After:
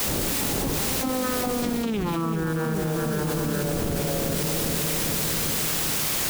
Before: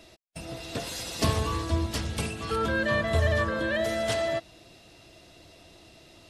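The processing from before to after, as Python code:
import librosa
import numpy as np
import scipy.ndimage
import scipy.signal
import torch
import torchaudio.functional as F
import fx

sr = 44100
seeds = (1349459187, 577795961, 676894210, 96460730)

p1 = fx.vocoder_glide(x, sr, note=59, semitones=-11)
p2 = fx.dmg_wind(p1, sr, seeds[0], corner_hz=310.0, level_db=-35.0)
p3 = fx.doppler_pass(p2, sr, speed_mps=56, closest_m=4.3, pass_at_s=1.99)
p4 = fx.quant_dither(p3, sr, seeds[1], bits=8, dither='triangular')
p5 = p3 + (p4 * librosa.db_to_amplitude(-7.0))
p6 = fx.echo_filtered(p5, sr, ms=399, feedback_pct=69, hz=1500.0, wet_db=-9.0)
p7 = fx.env_flatten(p6, sr, amount_pct=100)
y = p7 * librosa.db_to_amplitude(4.5)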